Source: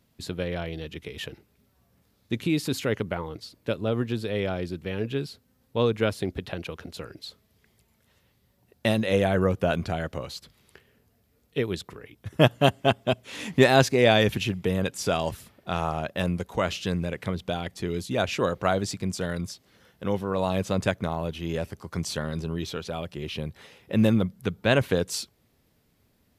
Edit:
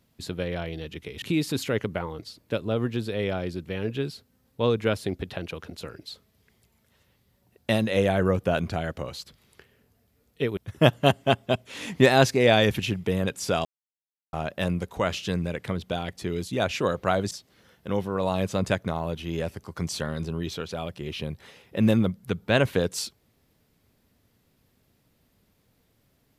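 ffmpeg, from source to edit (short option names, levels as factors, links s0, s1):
-filter_complex "[0:a]asplit=6[s0][s1][s2][s3][s4][s5];[s0]atrim=end=1.222[s6];[s1]atrim=start=2.378:end=11.732[s7];[s2]atrim=start=12.148:end=15.23,asetpts=PTS-STARTPTS,afade=t=out:st=3.078:d=0.004:c=hsin[s8];[s3]atrim=start=15.23:end=15.91,asetpts=PTS-STARTPTS,volume=0[s9];[s4]atrim=start=15.91:end=18.892,asetpts=PTS-STARTPTS,afade=t=in:d=0.004:c=hsin[s10];[s5]atrim=start=19.468[s11];[s6][s7]acrossfade=d=0.004:c1=hsin:c2=hsin[s12];[s8][s9][s10]concat=n=3:v=0:a=1[s13];[s12][s13]acrossfade=d=0.004:c1=hsin:c2=hsin[s14];[s14][s11]acrossfade=d=0.004:c1=hsin:c2=hsin"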